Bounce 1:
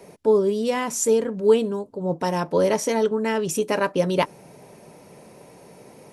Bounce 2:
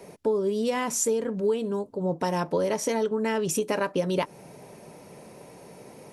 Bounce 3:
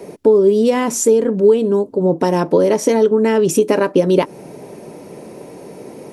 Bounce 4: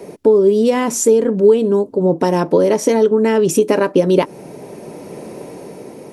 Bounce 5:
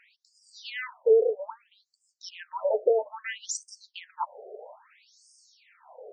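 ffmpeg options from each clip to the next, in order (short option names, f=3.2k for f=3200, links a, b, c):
-af "acompressor=threshold=-22dB:ratio=6"
-af "equalizer=f=330:w=0.97:g=9.5,volume=6.5dB"
-af "dynaudnorm=f=120:g=11:m=3.5dB"
-af "afftfilt=real='re*between(b*sr/1024,530*pow(6700/530,0.5+0.5*sin(2*PI*0.61*pts/sr))/1.41,530*pow(6700/530,0.5+0.5*sin(2*PI*0.61*pts/sr))*1.41)':imag='im*between(b*sr/1024,530*pow(6700/530,0.5+0.5*sin(2*PI*0.61*pts/sr))/1.41,530*pow(6700/530,0.5+0.5*sin(2*PI*0.61*pts/sr))*1.41)':win_size=1024:overlap=0.75,volume=-6dB"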